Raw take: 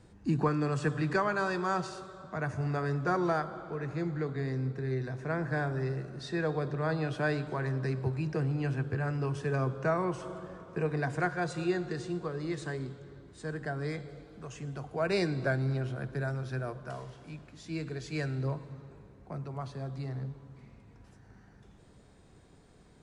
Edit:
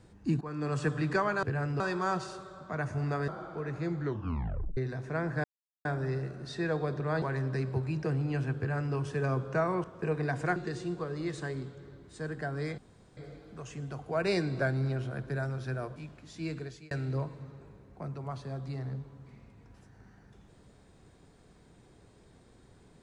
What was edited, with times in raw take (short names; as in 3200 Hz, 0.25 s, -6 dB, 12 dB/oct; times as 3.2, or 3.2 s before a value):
0.41–0.75 fade in, from -22.5 dB
2.91–3.43 cut
4.16 tape stop 0.76 s
5.59 insert silence 0.41 s
6.96–7.52 cut
8.88–9.25 copy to 1.43
10.14–10.58 cut
11.3–11.8 cut
14.02 insert room tone 0.39 s
16.81–17.26 cut
17.87–18.21 fade out